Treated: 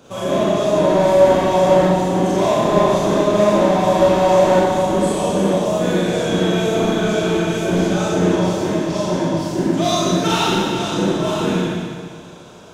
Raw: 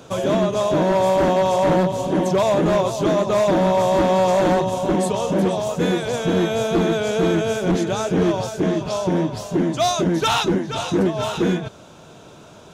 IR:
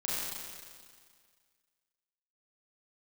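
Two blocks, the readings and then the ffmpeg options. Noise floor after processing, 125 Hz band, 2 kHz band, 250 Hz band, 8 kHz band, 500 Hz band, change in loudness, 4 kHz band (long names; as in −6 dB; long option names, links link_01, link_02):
−37 dBFS, +2.5 dB, +3.0 dB, +2.5 dB, +3.0 dB, +3.5 dB, +3.0 dB, +3.0 dB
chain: -filter_complex "[1:a]atrim=start_sample=2205[link_01];[0:a][link_01]afir=irnorm=-1:irlink=0,volume=-3.5dB"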